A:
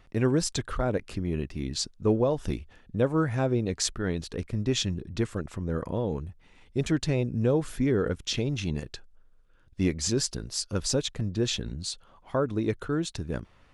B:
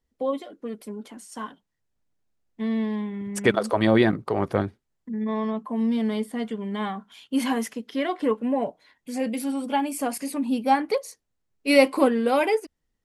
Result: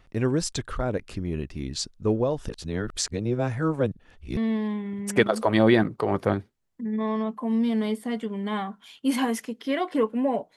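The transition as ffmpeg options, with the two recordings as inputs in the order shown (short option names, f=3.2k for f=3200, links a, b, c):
-filter_complex "[0:a]apad=whole_dur=10.56,atrim=end=10.56,asplit=2[a][b];[a]atrim=end=2.492[c];[b]atrim=start=2.488:end=4.372,asetpts=PTS-STARTPTS,areverse[d];[1:a]atrim=start=2.648:end=8.84[e];[c][d]acrossfade=d=0.004:c1=hsin:c2=hsin[f];[f][e]acrossfade=d=0.004:c1=hsin:c2=hsin"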